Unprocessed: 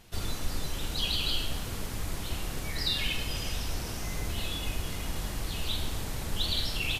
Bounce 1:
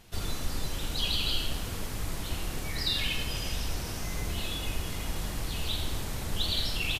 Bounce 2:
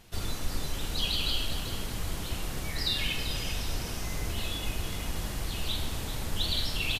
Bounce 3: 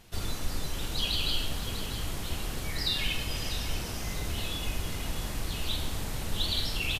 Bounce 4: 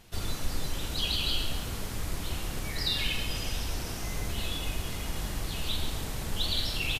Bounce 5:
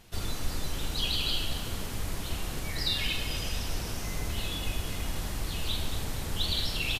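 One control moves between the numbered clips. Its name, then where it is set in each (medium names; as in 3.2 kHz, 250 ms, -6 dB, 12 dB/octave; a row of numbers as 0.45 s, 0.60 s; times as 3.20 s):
feedback delay, time: 85 ms, 389 ms, 647 ms, 135 ms, 228 ms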